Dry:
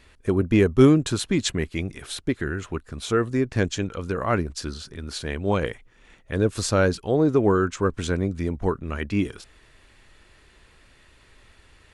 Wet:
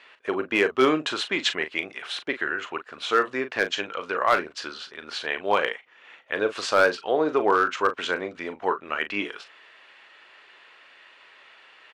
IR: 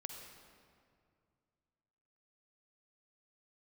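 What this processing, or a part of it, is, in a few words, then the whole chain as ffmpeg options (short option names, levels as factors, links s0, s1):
megaphone: -filter_complex "[0:a]highpass=670,lowpass=3100,lowshelf=f=280:g=-3,equalizer=f=2900:t=o:w=0.27:g=4.5,asoftclip=type=hard:threshold=0.126,asplit=2[s0][s1];[s1]adelay=39,volume=0.299[s2];[s0][s2]amix=inputs=2:normalize=0,volume=2.24"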